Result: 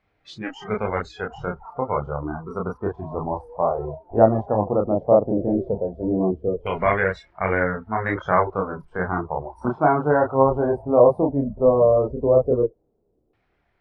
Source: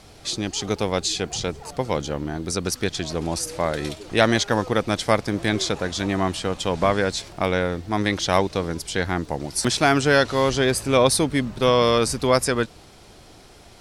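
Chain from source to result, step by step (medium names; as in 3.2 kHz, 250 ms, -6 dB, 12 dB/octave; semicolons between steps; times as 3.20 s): chorus voices 2, 0.48 Hz, delay 30 ms, depth 3.2 ms; LFO low-pass saw down 0.15 Hz 420–2100 Hz; spectral noise reduction 21 dB; trim +1.5 dB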